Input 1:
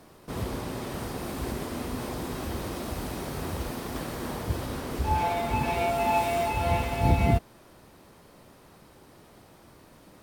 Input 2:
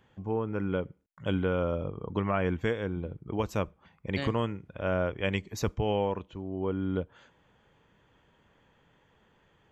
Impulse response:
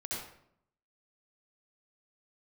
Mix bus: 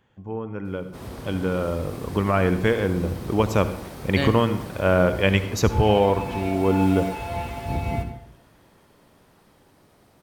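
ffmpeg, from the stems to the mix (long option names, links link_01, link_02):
-filter_complex "[0:a]adelay=650,volume=-6.5dB,asplit=2[link_01][link_02];[link_02]volume=-7.5dB[link_03];[1:a]dynaudnorm=framelen=390:gausssize=11:maxgain=11.5dB,volume=-2dB,asplit=2[link_04][link_05];[link_05]volume=-11.5dB[link_06];[2:a]atrim=start_sample=2205[link_07];[link_03][link_06]amix=inputs=2:normalize=0[link_08];[link_08][link_07]afir=irnorm=-1:irlink=0[link_09];[link_01][link_04][link_09]amix=inputs=3:normalize=0"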